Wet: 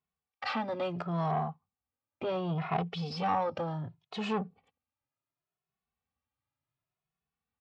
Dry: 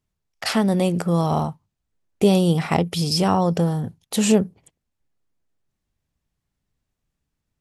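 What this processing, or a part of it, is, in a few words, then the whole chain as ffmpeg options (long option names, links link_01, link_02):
barber-pole flanger into a guitar amplifier: -filter_complex "[0:a]asettb=1/sr,asplit=3[link_01][link_02][link_03];[link_01]atrim=end=1.314[link_04];[link_02]atrim=start=1.31:end=2.78,asetpts=PTS-STARTPTS,afade=type=in:duration=0.004:curve=qsin,afade=type=out:start_time=1.466:duration=0.004:curve=qsin,aemphasis=mode=reproduction:type=75kf[link_05];[link_03]atrim=start=2.776[link_06];[link_04][link_05]acrossfade=duration=0.004:curve1=hsin:curve2=qsin[link_07];[link_07][link_06]acrossfade=duration=0.004:curve1=qsin:curve2=hsin,asplit=2[link_08][link_09];[link_09]adelay=2.3,afreqshift=0.69[link_10];[link_08][link_10]amix=inputs=2:normalize=1,asoftclip=type=tanh:threshold=-18dB,highpass=98,equalizer=frequency=200:width_type=q:width=4:gain=-5,equalizer=frequency=330:width_type=q:width=4:gain=-6,equalizer=frequency=780:width_type=q:width=4:gain=7,equalizer=frequency=1200:width_type=q:width=4:gain=9,equalizer=frequency=2500:width_type=q:width=4:gain=4,lowpass=frequency=4100:width=0.5412,lowpass=frequency=4100:width=1.3066,volume=-7dB"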